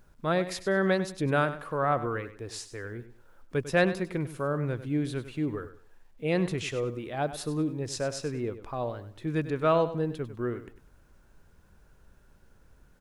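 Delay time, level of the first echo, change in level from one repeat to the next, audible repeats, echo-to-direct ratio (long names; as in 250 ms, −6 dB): 99 ms, −13.0 dB, −11.5 dB, 2, −12.5 dB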